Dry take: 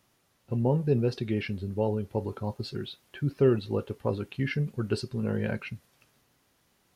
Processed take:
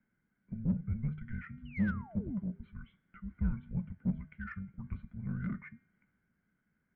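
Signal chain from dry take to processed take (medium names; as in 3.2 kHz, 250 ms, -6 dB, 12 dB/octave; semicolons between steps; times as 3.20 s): painted sound fall, 1.65–2.39 s, 500–3400 Hz -35 dBFS; cascade formant filter e; de-hum 246.1 Hz, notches 39; frequency shift -340 Hz; in parallel at -5 dB: saturation -39 dBFS, distortion -6 dB; on the sum: trim +1 dB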